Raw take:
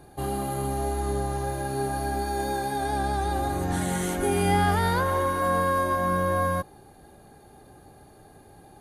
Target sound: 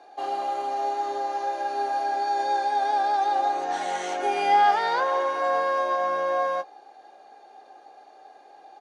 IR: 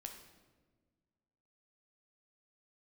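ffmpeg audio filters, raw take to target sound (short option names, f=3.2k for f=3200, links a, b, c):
-filter_complex "[0:a]highpass=f=390:w=0.5412,highpass=f=390:w=1.3066,equalizer=f=390:t=q:w=4:g=-4,equalizer=f=750:t=q:w=4:g=9,equalizer=f=2.6k:t=q:w=4:g=3,equalizer=f=5.7k:t=q:w=4:g=5,lowpass=f=6k:w=0.5412,lowpass=f=6k:w=1.3066,asplit=2[a][b];[b]adelay=17,volume=-12dB[c];[a][c]amix=inputs=2:normalize=0"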